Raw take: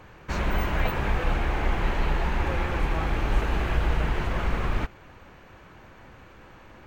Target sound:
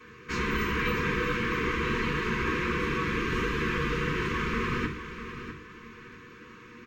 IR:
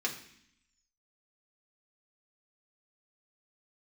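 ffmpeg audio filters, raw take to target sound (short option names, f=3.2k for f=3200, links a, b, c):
-filter_complex "[0:a]asuperstop=centerf=690:order=20:qfactor=1.6,aecho=1:1:649|1298|1947:0.299|0.0806|0.0218[a];[1:a]atrim=start_sample=2205,atrim=end_sample=6174[b];[a][b]afir=irnorm=-1:irlink=0,volume=-2.5dB"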